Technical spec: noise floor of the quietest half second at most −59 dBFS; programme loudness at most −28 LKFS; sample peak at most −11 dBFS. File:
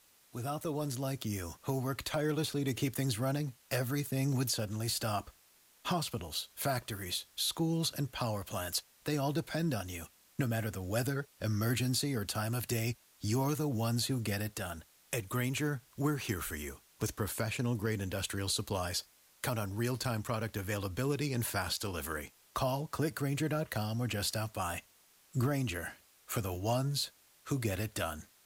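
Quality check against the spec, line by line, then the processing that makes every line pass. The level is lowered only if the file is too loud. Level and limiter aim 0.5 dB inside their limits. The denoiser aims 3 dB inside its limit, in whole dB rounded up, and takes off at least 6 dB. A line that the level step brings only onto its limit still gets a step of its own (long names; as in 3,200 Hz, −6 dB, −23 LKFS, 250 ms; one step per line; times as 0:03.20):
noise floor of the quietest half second −65 dBFS: in spec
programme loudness −35.0 LKFS: in spec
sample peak −20.5 dBFS: in spec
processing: no processing needed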